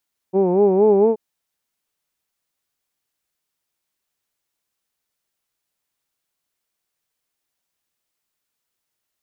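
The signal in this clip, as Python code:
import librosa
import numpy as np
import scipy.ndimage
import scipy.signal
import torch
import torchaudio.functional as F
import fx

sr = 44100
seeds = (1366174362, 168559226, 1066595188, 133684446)

y = fx.formant_vowel(sr, seeds[0], length_s=0.83, hz=182.0, glide_st=3.0, vibrato_hz=4.3, vibrato_st=1.15, f1_hz=420.0, f2_hz=850.0, f3_hz=2400.0)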